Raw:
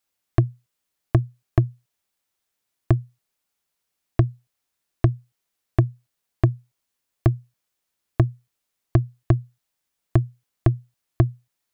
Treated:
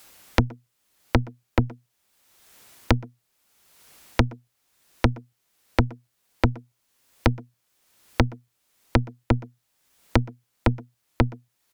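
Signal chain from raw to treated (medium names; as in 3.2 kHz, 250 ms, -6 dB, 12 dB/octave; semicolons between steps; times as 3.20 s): Chebyshev shaper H 4 -7 dB, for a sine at -5.5 dBFS; speakerphone echo 120 ms, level -16 dB; three bands compressed up and down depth 100%; trim -1 dB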